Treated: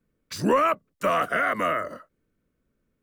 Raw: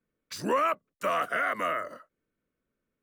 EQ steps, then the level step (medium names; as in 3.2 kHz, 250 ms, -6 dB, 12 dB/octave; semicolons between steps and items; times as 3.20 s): bass shelf 180 Hz +7 dB; bass shelf 490 Hz +3.5 dB; +3.5 dB